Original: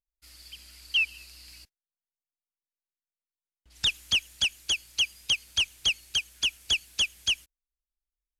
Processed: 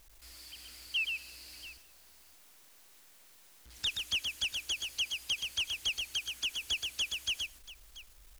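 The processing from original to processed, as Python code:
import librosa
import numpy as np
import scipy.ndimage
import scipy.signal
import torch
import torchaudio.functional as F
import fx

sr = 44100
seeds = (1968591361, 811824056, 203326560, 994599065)

y = x + 0.5 * 10.0 ** (-41.5 / 20.0) * np.sign(x)
y = fx.peak_eq(y, sr, hz=150.0, db=-10.5, octaves=0.39)
y = fx.echo_multitap(y, sr, ms=(125, 685), db=(-4.5, -17.0))
y = F.gain(torch.from_numpy(y), -8.5).numpy()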